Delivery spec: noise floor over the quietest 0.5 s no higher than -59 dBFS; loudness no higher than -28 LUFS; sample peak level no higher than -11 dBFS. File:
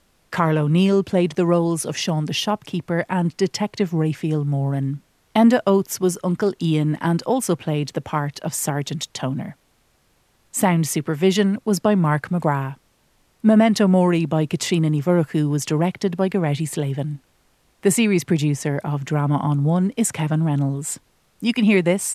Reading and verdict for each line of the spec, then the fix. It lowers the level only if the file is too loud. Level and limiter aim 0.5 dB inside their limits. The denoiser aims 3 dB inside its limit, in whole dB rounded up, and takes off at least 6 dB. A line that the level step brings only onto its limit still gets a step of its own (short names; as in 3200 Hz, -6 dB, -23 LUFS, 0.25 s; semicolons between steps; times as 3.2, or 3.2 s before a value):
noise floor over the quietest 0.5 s -62 dBFS: OK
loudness -20.5 LUFS: fail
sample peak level -4.5 dBFS: fail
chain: gain -8 dB